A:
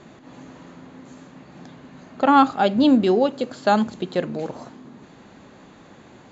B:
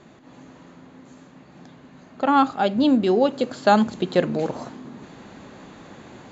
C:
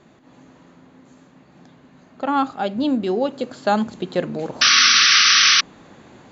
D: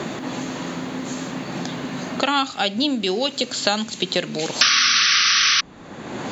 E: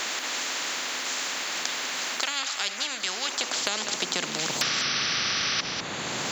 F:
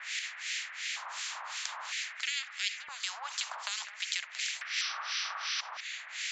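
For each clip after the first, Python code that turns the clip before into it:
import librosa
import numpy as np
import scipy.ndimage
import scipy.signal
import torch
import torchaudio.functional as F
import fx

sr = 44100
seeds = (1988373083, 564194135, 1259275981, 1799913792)

y1 = fx.rider(x, sr, range_db=4, speed_s=0.5)
y2 = fx.spec_paint(y1, sr, seeds[0], shape='noise', start_s=4.61, length_s=1.0, low_hz=1100.0, high_hz=6100.0, level_db=-11.0)
y2 = F.gain(torch.from_numpy(y2), -2.5).numpy()
y3 = fx.band_squash(y2, sr, depth_pct=100)
y3 = F.gain(torch.from_numpy(y3), -3.0).numpy()
y4 = fx.filter_sweep_highpass(y3, sr, from_hz=1800.0, to_hz=140.0, start_s=2.97, end_s=4.58, q=1.8)
y4 = y4 + 10.0 ** (-21.0 / 20.0) * np.pad(y4, (int(199 * sr / 1000.0), 0))[:len(y4)]
y4 = fx.spectral_comp(y4, sr, ratio=4.0)
y4 = F.gain(torch.from_numpy(y4), -6.5).numpy()
y5 = scipy.signal.sosfilt(scipy.signal.ellip(3, 1.0, 50, [620.0, 8700.0], 'bandpass', fs=sr, output='sos'), y4)
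y5 = fx.filter_lfo_highpass(y5, sr, shape='square', hz=0.52, low_hz=980.0, high_hz=2000.0, q=2.5)
y5 = fx.harmonic_tremolo(y5, sr, hz=2.8, depth_pct=100, crossover_hz=1600.0)
y5 = F.gain(torch.from_numpy(y5), -5.5).numpy()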